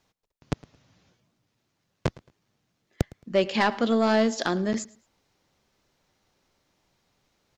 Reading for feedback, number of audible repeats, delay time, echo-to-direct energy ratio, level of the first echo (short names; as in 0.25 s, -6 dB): 27%, 2, 0.11 s, -22.0 dB, -22.5 dB